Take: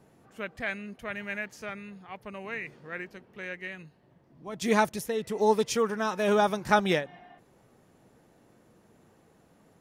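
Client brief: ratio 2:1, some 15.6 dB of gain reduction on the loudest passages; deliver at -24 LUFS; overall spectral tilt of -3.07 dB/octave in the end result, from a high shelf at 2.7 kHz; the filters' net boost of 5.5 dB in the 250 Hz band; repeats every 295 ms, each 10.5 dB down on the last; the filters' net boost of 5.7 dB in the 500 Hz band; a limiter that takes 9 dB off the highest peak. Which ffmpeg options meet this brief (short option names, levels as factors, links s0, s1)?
-af "equalizer=f=250:t=o:g=6,equalizer=f=500:t=o:g=5.5,highshelf=f=2700:g=-5.5,acompressor=threshold=0.00631:ratio=2,alimiter=level_in=2:limit=0.0631:level=0:latency=1,volume=0.501,aecho=1:1:295|590|885:0.299|0.0896|0.0269,volume=7.08"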